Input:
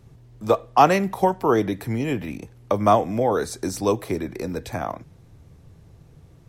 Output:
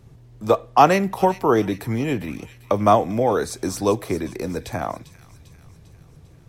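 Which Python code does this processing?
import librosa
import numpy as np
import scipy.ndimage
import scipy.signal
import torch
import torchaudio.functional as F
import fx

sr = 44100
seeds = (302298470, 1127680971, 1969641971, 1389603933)

y = fx.echo_wet_highpass(x, sr, ms=398, feedback_pct=56, hz=2400.0, wet_db=-13.0)
y = y * librosa.db_to_amplitude(1.5)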